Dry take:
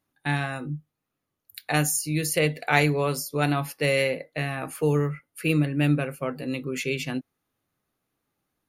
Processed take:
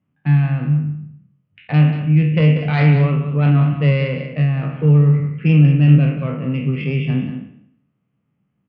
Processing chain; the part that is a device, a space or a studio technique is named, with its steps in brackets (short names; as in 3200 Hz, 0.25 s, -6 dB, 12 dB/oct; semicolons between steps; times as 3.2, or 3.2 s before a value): spectral trails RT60 0.70 s; steep low-pass 3200 Hz 96 dB/oct; guitar amplifier (tube stage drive 10 dB, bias 0.7; tone controls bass +13 dB, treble -1 dB; speaker cabinet 110–4400 Hz, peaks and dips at 140 Hz +6 dB, 200 Hz +8 dB, 340 Hz -4 dB, 810 Hz -4 dB, 1600 Hz -5 dB); echo 0.187 s -10 dB; gain +3.5 dB